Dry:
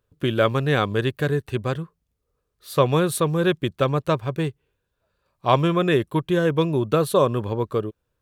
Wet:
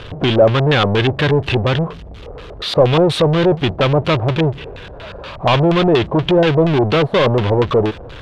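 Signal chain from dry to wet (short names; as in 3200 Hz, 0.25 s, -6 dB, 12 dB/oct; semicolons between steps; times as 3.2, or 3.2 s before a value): power-law curve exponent 0.35; LFO low-pass square 4.2 Hz 690–3300 Hz; gain -4 dB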